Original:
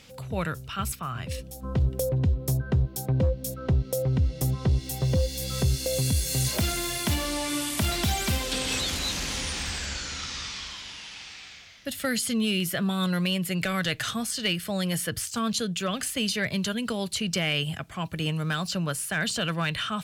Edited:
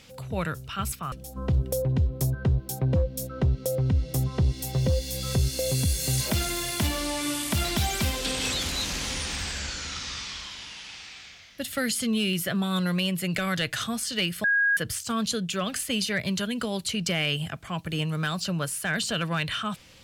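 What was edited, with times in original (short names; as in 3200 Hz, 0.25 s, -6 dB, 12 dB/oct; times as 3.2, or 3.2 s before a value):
1.12–1.39 cut
14.71–15.04 bleep 1640 Hz -19 dBFS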